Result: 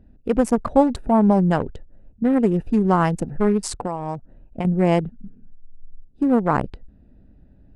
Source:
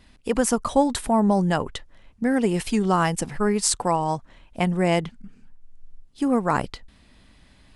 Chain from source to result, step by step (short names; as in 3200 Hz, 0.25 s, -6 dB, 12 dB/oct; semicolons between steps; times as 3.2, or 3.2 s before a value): Wiener smoothing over 41 samples; high shelf 2300 Hz -11.5 dB; 3.59–4.65 compressor 6:1, threshold -28 dBFS, peak gain reduction 9.5 dB; gain +4.5 dB